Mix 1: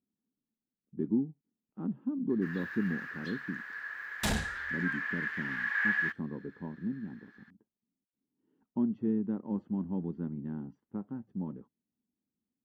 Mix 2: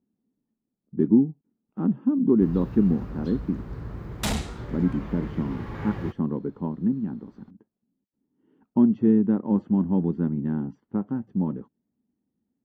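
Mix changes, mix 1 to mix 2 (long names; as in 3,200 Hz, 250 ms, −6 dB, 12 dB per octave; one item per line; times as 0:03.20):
speech +11.5 dB
first sound: remove high-pass with resonance 1,700 Hz, resonance Q 16
second sound +4.0 dB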